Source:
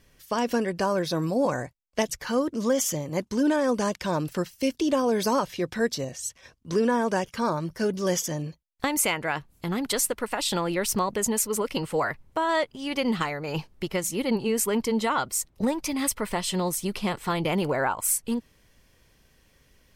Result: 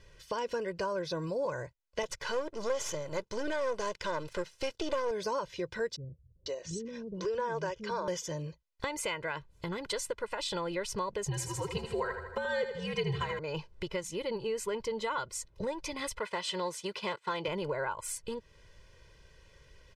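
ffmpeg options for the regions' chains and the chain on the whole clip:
-filter_complex "[0:a]asettb=1/sr,asplit=3[a][b][c];[a]atrim=end=2.034[d];[b]atrim=start=2.03:end=5.11,asetpts=PTS-STARTPTS,afade=t=in:d=0.004:c=qsin,afade=t=out:st=3.076:d=0.004:c=qsin,aeval=exprs='if(lt(val(0),0),0.251*val(0),val(0))':c=same,lowshelf=f=250:g=-6.5,acontrast=76[e];[c]atrim=start=5.106[f];[d][e]acrossfade=d=0.004:c1=hsin:c2=qsin[g];[g][f]acrossfade=d=0.004:c1=qsin:c2=hsin,asettb=1/sr,asplit=3[h][i][j];[h]atrim=end=5.964[k];[i]atrim=start=5.96:end=8.08,asetpts=PTS-STARTPTS,afade=t=in:d=0.004:c=qsin,afade=t=out:st=2.116:d=0.004:c=qsin,lowpass=f=7.4k:w=0.5412,lowpass=f=7.4k:w=1.3066,acrossover=split=290[l][m];[m]adelay=500[n];[l][n]amix=inputs=2:normalize=0,atrim=end_sample=93492[o];[j]atrim=start=8.076[p];[k][o]acrossfade=d=0.004:c1=hsin:c2=qsin[q];[q][p]acrossfade=d=0.004:c1=qsin:c2=hsin,asettb=1/sr,asplit=3[r][s][t];[r]atrim=end=11.264[u];[s]atrim=start=11.26:end=13.39,asetpts=PTS-STARTPTS,afade=t=in:d=0.004:c=qsin,afade=t=out:st=2.126:d=0.004:c=qsin,aecho=1:1:3.6:0.71,atrim=end_sample=93933,afreqshift=-91,aecho=1:1:79|158|237|316|395|474:0.355|0.177|0.0887|0.0444|0.0222|0.0111,atrim=end_sample=93933[v];[t]atrim=start=13.386[w];[u][v]acrossfade=d=0.004:c1=hsin:c2=qsin[x];[x][w]acrossfade=d=0.004:c1=qsin:c2=hsin,asettb=1/sr,asplit=3[y][z][aa];[y]atrim=end=16.194[ab];[z]atrim=start=16.19:end=17.48,asetpts=PTS-STARTPTS,afade=t=in:d=0.004:c=qsin,afade=t=out:st=1.286:d=0.004:c=qsin,agate=range=-33dB:threshold=-32dB:ratio=3:release=100:detection=peak,asplit=2[ac][ad];[ad]highpass=f=720:p=1,volume=10dB,asoftclip=type=tanh:threshold=-14.5dB[ae];[ac][ae]amix=inputs=2:normalize=0,lowpass=f=5.8k:p=1,volume=-6dB,highpass=140[af];[aa]atrim=start=17.476[ag];[ab][af]acrossfade=d=0.004:c1=hsin:c2=qsin[ah];[ah][ag]acrossfade=d=0.004:c1=qsin:c2=hsin,lowpass=6k,aecho=1:1:2:0.74,acompressor=threshold=-40dB:ratio=2"

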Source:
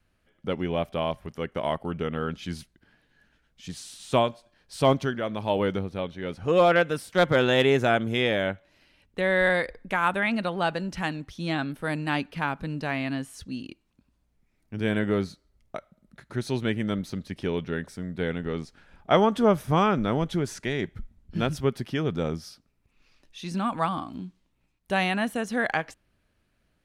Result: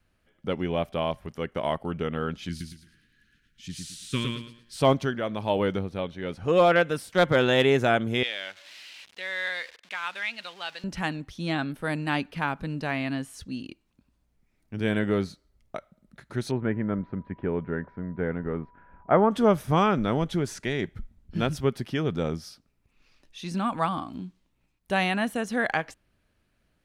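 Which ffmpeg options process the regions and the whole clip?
-filter_complex "[0:a]asettb=1/sr,asplit=3[a][b][c];[a]atrim=end=2.494[d];[b]atrim=start=2.49:end=4.76,asetpts=PTS-STARTPTS,afade=t=in:d=0.004:c=qsin,afade=t=out:st=2.266:d=0.004:c=qsin,asuperstop=centerf=710:order=4:qfactor=0.56,aecho=1:1:111|222|333|444:0.668|0.194|0.0562|0.0163,atrim=end_sample=100107[e];[c]atrim=start=4.756[f];[d][e]acrossfade=d=0.004:c1=hsin:c2=qsin[g];[g][f]acrossfade=d=0.004:c1=qsin:c2=hsin,asettb=1/sr,asplit=3[h][i][j];[h]atrim=end=8.234[k];[i]atrim=start=8.23:end=10.84,asetpts=PTS-STARTPTS,afade=t=in:d=0.004:c=qsin,afade=t=out:st=2.606:d=0.004:c=qsin,aeval=exprs='val(0)+0.5*0.015*sgn(val(0))':c=same,bandpass=f=3.5k:t=q:w=1.2[l];[j]atrim=start=10.836[m];[k][l]acrossfade=d=0.004:c1=hsin:c2=qsin[n];[n][m]acrossfade=d=0.004:c1=qsin:c2=hsin,asettb=1/sr,asplit=3[o][p][q];[o]atrim=end=16.514[r];[p]atrim=start=16.51:end=19.31,asetpts=PTS-STARTPTS,afade=t=in:d=0.004:c=qsin,afade=t=out:st=2.796:d=0.004:c=qsin,lowpass=f=1.8k:w=0.5412,lowpass=f=1.8k:w=1.3066,aeval=exprs='val(0)+0.00158*sin(2*PI*980*n/s)':c=same[s];[q]atrim=start=19.306[t];[r][s]acrossfade=d=0.004:c1=hsin:c2=qsin[u];[u][t]acrossfade=d=0.004:c1=qsin:c2=hsin"

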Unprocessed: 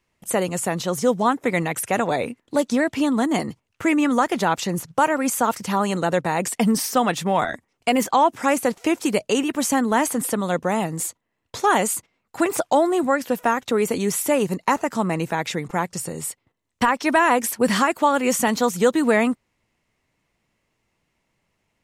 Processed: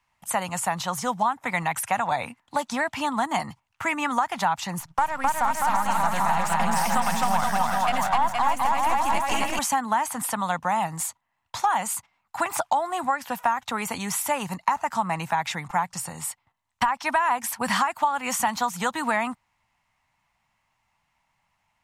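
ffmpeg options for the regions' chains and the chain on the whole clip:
-filter_complex "[0:a]asettb=1/sr,asplit=3[a][b][c];[a]atrim=end=4.804[d];[b]atrim=start=4.8:end=9.59,asetpts=PTS-STARTPTS,afade=t=in:d=0.004:c=qsin,afade=t=out:st=4.786:d=0.004:c=qsin,aeval=exprs='if(lt(val(0),0),0.447*val(0),val(0))':c=same,aecho=1:1:260|468|634.4|767.5|874|959.2:0.794|0.631|0.501|0.398|0.316|0.251,atrim=end_sample=211239[e];[c]atrim=start=9.586[f];[d][e]acrossfade=d=0.004:c1=hsin:c2=qsin[g];[g][f]acrossfade=d=0.004:c1=qsin:c2=hsin,lowshelf=f=600:t=q:w=3:g=-12,acrossover=split=170[h][i];[i]acompressor=threshold=-20dB:ratio=6[j];[h][j]amix=inputs=2:normalize=0,bass=f=250:g=9,treble=f=4k:g=-2"

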